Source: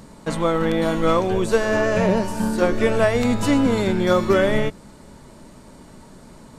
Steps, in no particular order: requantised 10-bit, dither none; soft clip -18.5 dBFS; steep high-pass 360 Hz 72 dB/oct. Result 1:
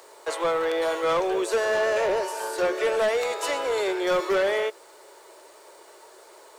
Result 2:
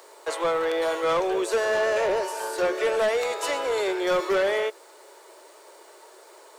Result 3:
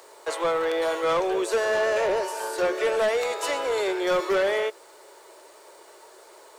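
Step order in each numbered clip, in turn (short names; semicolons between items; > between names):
steep high-pass > soft clip > requantised; requantised > steep high-pass > soft clip; steep high-pass > requantised > soft clip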